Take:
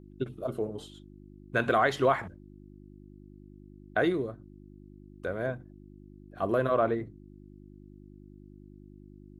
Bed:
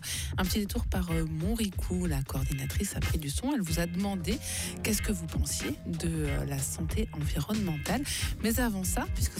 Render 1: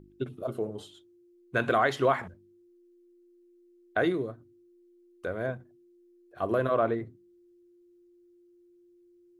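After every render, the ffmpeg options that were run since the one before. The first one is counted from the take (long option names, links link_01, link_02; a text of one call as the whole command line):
ffmpeg -i in.wav -af "bandreject=frequency=50:width_type=h:width=4,bandreject=frequency=100:width_type=h:width=4,bandreject=frequency=150:width_type=h:width=4,bandreject=frequency=200:width_type=h:width=4,bandreject=frequency=250:width_type=h:width=4,bandreject=frequency=300:width_type=h:width=4" out.wav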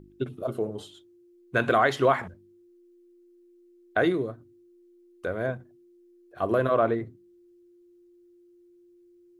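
ffmpeg -i in.wav -af "volume=3dB" out.wav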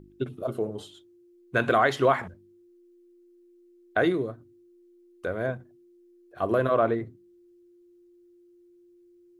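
ffmpeg -i in.wav -af anull out.wav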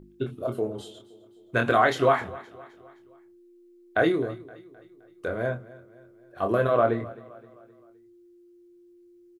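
ffmpeg -i in.wav -filter_complex "[0:a]asplit=2[link_01][link_02];[link_02]adelay=25,volume=-5.5dB[link_03];[link_01][link_03]amix=inputs=2:normalize=0,aecho=1:1:260|520|780|1040:0.1|0.048|0.023|0.0111" out.wav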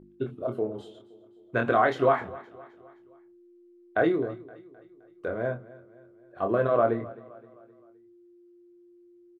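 ffmpeg -i in.wav -af "lowpass=frequency=1400:poles=1,lowshelf=frequency=91:gain=-9.5" out.wav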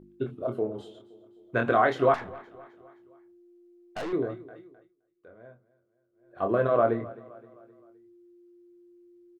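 ffmpeg -i in.wav -filter_complex "[0:a]asettb=1/sr,asplit=3[link_01][link_02][link_03];[link_01]atrim=end=2.144[link_04];[link_02]atrim=start=2.14:end=4.13,asetpts=PTS-STARTPTS,afade=type=in:duration=0.004:curve=qsin,afade=type=out:start_time=1.986:duration=0.004:curve=qsin,aeval=exprs='(tanh(39.8*val(0)+0.3)-tanh(0.3))/39.8':channel_layout=same[link_05];[link_03]atrim=start=4.126[link_06];[link_04][link_05]acrossfade=duration=0.004:curve1=hsin:curve2=qsin[link_07];[link_07][link_06]acrossfade=duration=0.004:curve1=qsin:curve2=hsin,asplit=3[link_08][link_09][link_10];[link_08]atrim=end=4.94,asetpts=PTS-STARTPTS,afade=type=out:start_time=4.64:duration=0.3:silence=0.0944061[link_11];[link_09]atrim=start=4.94:end=6.12,asetpts=PTS-STARTPTS,volume=-20.5dB[link_12];[link_10]atrim=start=6.12,asetpts=PTS-STARTPTS,afade=type=in:duration=0.3:silence=0.0944061[link_13];[link_11][link_12][link_13]concat=n=3:v=0:a=1" out.wav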